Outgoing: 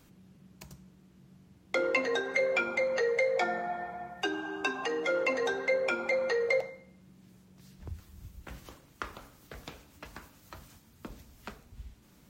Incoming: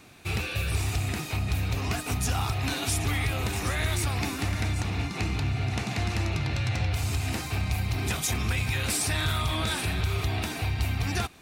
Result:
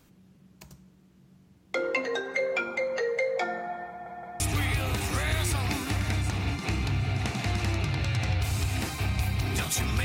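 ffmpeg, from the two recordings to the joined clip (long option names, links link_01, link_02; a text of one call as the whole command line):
ffmpeg -i cue0.wav -i cue1.wav -filter_complex "[0:a]apad=whole_dur=10.04,atrim=end=10.04,asplit=3[link_01][link_02][link_03];[link_01]atrim=end=4.062[link_04];[link_02]atrim=start=3.888:end=4.062[link_05];[link_03]atrim=start=3.888:end=4.062[link_06];[1:a]atrim=start=2.918:end=8.56[link_07];[link_04][link_05]acrossfade=duration=0.004:curve1=hsin:curve2=hsin[link_08];[link_08][link_06]acrossfade=duration=0.004:curve1=hsin:curve2=hsin[link_09];[link_09][link_07]acrossfade=duration=0.004:curve1=hsin:curve2=hsin" out.wav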